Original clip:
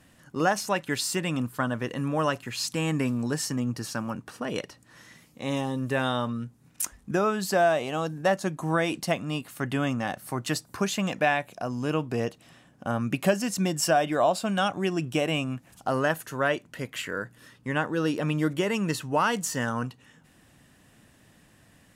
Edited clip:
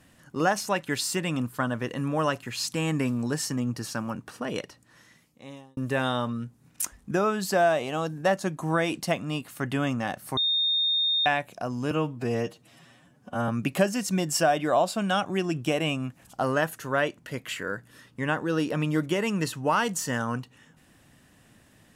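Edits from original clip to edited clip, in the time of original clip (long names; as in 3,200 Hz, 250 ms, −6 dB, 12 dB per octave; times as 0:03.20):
0:04.48–0:05.77: fade out
0:10.37–0:11.26: beep over 3,670 Hz −21.5 dBFS
0:11.91–0:12.96: time-stretch 1.5×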